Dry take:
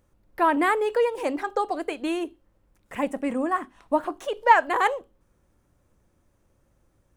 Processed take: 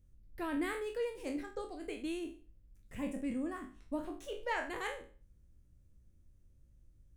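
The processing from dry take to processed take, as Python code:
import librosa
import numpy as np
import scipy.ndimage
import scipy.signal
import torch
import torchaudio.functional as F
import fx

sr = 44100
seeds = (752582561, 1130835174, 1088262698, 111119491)

y = fx.spec_trails(x, sr, decay_s=0.39)
y = fx.tone_stack(y, sr, knobs='10-0-1')
y = fx.band_widen(y, sr, depth_pct=70, at=(0.73, 1.88))
y = y * 10.0 ** (9.5 / 20.0)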